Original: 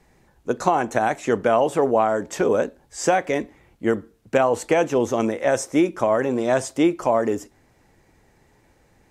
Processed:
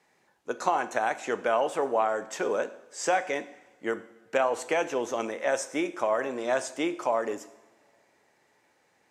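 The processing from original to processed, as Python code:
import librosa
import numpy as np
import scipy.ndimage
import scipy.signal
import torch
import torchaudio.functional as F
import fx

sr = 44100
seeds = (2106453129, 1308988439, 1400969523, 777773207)

y = fx.weighting(x, sr, curve='A')
y = fx.rev_double_slope(y, sr, seeds[0], early_s=0.79, late_s=2.9, knee_db=-20, drr_db=12.0)
y = F.gain(torch.from_numpy(y), -5.0).numpy()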